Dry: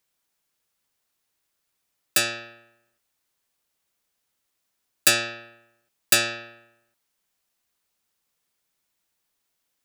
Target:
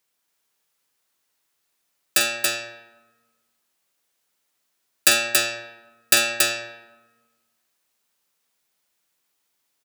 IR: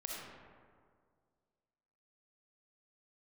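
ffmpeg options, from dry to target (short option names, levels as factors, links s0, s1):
-filter_complex "[0:a]lowshelf=f=120:g=-11,aecho=1:1:46.65|279.9:0.316|0.708,asplit=2[s0][s1];[1:a]atrim=start_sample=2205,asetrate=66150,aresample=44100[s2];[s1][s2]afir=irnorm=-1:irlink=0,volume=0.501[s3];[s0][s3]amix=inputs=2:normalize=0"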